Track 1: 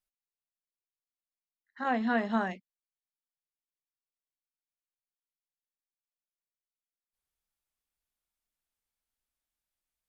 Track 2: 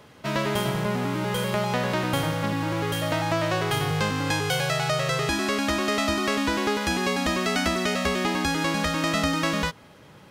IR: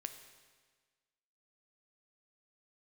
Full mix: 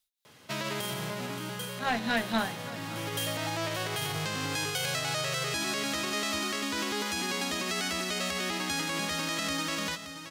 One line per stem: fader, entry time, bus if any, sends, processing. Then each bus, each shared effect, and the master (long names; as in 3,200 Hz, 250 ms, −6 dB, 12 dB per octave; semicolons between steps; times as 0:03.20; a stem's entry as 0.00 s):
−1.0 dB, 0.00 s, send −6 dB, echo send −17.5 dB, parametric band 3,700 Hz +9.5 dB 0.38 octaves; amplitude tremolo 4.2 Hz, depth 69%
−9.0 dB, 0.25 s, send −13 dB, echo send −9.5 dB, high-pass filter 79 Hz 24 dB per octave; brickwall limiter −17.5 dBFS, peak gain reduction 8.5 dB; automatic ducking −9 dB, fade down 0.80 s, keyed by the first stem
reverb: on, RT60 1.5 s, pre-delay 8 ms
echo: single-tap delay 574 ms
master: high-shelf EQ 2,300 Hz +11 dB; asymmetric clip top −26.5 dBFS